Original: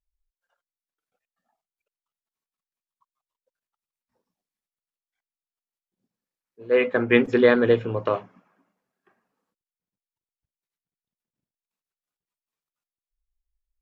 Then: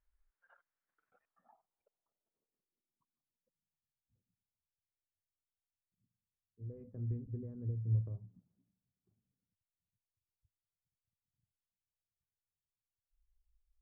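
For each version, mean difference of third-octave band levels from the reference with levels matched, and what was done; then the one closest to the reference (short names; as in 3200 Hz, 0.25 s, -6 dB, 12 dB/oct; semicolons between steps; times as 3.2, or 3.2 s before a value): 12.0 dB: compressor 5:1, threshold -30 dBFS, peak gain reduction 17 dB; low-pass sweep 1600 Hz -> 100 Hz, 1.02–4.23; gain +3 dB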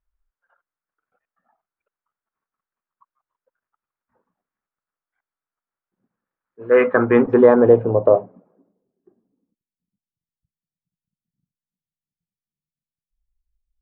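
3.5 dB: in parallel at +2.5 dB: limiter -12.5 dBFS, peak gain reduction 8.5 dB; on the sum: low-pass sweep 1400 Hz -> 170 Hz, 6.77–10.28; gain -1.5 dB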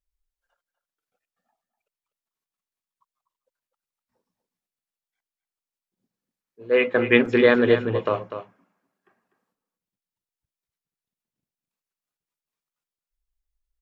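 2.0 dB: dynamic EQ 2700 Hz, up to +4 dB, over -35 dBFS, Q 1.3; on a send: echo 0.247 s -10 dB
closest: third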